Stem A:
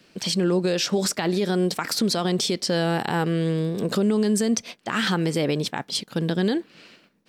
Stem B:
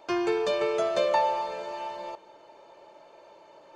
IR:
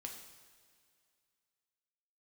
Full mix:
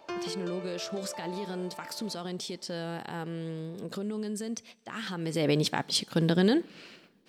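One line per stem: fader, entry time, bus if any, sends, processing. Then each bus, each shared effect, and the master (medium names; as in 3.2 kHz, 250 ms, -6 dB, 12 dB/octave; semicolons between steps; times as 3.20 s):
5.14 s -14 dB -> 5.53 s -1.5 dB, 0.00 s, send -16 dB, none
-2.0 dB, 0.00 s, no send, peak limiter -22.5 dBFS, peak gain reduction 9 dB; auto duck -10 dB, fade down 0.50 s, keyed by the first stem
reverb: on, pre-delay 3 ms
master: none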